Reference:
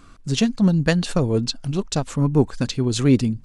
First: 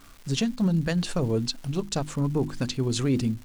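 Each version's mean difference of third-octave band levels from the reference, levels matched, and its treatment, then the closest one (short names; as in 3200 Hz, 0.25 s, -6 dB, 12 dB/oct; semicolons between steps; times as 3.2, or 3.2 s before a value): 4.5 dB: notches 50/100/150/200/250/300/350 Hz; limiter -11.5 dBFS, peak gain reduction 6.5 dB; crackle 580/s -37 dBFS; gain -4 dB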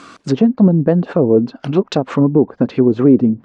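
7.0 dB: treble ducked by the level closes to 540 Hz, closed at -17.5 dBFS; BPF 280–7000 Hz; maximiser +15.5 dB; gain -1 dB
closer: first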